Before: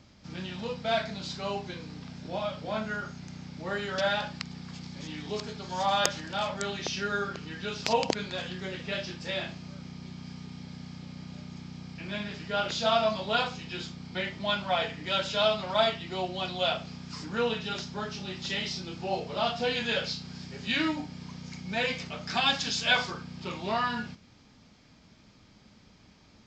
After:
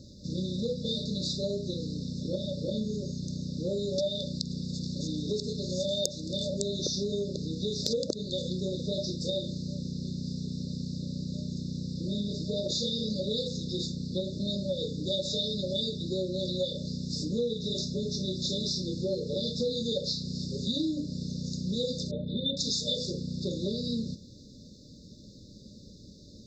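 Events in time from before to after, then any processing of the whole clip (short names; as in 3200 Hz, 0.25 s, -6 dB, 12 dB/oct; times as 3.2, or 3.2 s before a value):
22.11–22.57 steep low-pass 3500 Hz 72 dB/oct
whole clip: FFT band-reject 610–3500 Hz; compressor 4:1, threshold -36 dBFS; gain +8 dB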